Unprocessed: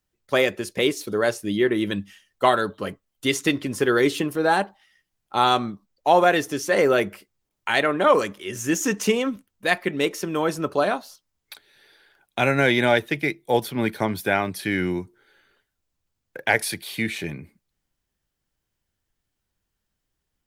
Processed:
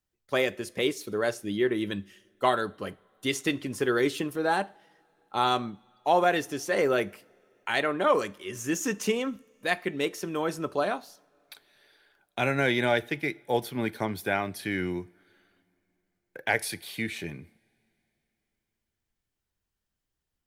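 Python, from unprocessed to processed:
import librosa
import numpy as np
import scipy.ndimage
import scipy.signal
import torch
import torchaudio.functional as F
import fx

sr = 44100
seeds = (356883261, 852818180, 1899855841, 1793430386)

y = fx.rev_double_slope(x, sr, seeds[0], early_s=0.43, late_s=3.5, knee_db=-22, drr_db=18.5)
y = y * 10.0 ** (-6.0 / 20.0)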